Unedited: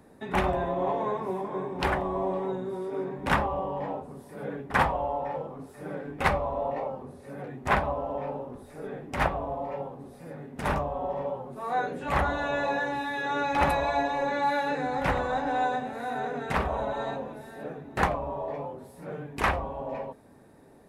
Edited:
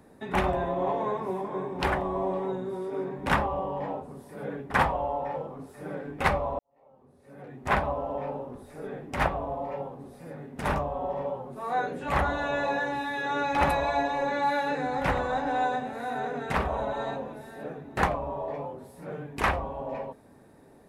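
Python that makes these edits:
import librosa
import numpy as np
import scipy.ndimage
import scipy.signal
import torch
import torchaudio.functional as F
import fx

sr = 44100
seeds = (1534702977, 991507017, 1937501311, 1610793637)

y = fx.edit(x, sr, fx.fade_in_span(start_s=6.59, length_s=1.2, curve='qua'), tone=tone)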